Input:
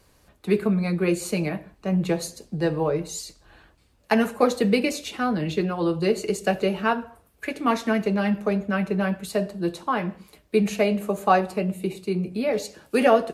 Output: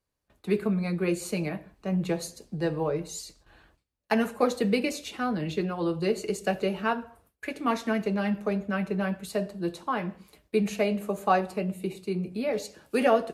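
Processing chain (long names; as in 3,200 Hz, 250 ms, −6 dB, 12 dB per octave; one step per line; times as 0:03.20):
noise gate with hold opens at −45 dBFS
level −4.5 dB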